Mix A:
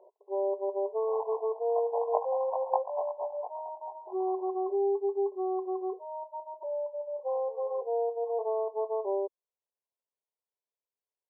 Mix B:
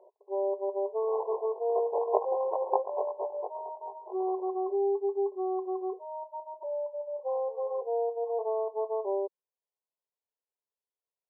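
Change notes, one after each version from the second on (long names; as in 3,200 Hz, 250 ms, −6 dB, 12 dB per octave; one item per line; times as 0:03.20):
second sound: remove flat-topped band-pass 840 Hz, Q 1.7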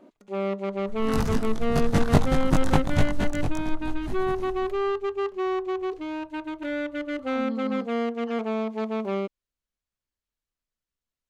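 master: remove linear-phase brick-wall band-pass 370–1,100 Hz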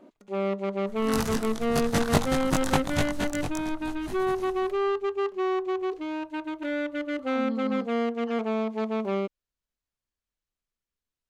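second sound: add spectral tilt +2 dB per octave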